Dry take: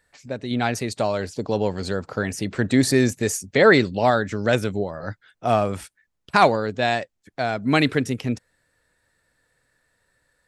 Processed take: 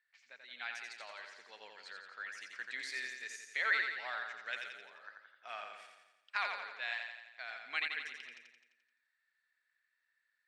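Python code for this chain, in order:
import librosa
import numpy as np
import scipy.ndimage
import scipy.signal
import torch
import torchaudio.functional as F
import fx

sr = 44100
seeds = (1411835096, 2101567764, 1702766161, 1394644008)

p1 = fx.ladder_bandpass(x, sr, hz=2400.0, resonance_pct=30)
p2 = p1 + fx.echo_feedback(p1, sr, ms=86, feedback_pct=57, wet_db=-5.0, dry=0)
y = p2 * 10.0 ** (-3.0 / 20.0)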